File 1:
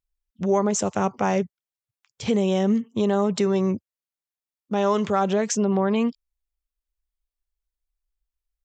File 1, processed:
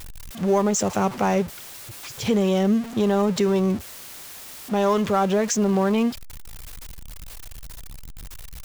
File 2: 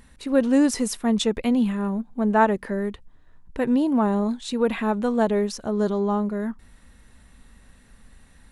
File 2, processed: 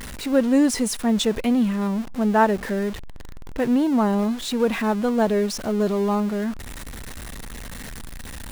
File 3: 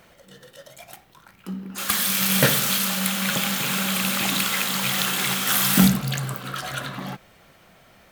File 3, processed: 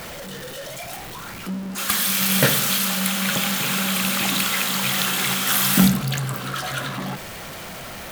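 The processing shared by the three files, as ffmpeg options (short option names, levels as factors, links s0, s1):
-af "aeval=exprs='val(0)+0.5*0.0316*sgn(val(0))':c=same"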